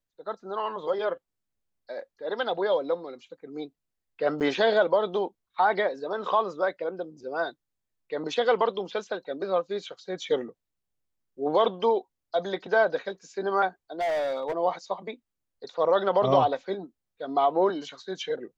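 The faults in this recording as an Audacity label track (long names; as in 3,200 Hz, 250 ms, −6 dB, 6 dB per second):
4.400000	4.410000	drop-out 8.1 ms
14.000000	14.530000	clipping −24.5 dBFS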